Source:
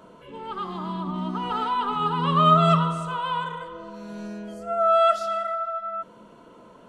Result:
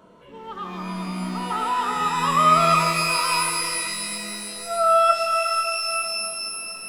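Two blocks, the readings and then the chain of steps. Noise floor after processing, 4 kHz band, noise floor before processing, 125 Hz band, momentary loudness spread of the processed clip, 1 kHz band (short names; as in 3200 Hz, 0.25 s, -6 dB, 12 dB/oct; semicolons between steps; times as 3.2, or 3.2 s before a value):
-42 dBFS, +8.0 dB, -50 dBFS, -5.5 dB, 14 LU, +2.5 dB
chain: dynamic EQ 1100 Hz, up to +5 dB, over -31 dBFS, Q 1.1; shimmer reverb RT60 3.2 s, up +12 st, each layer -2 dB, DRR 5.5 dB; gain -3 dB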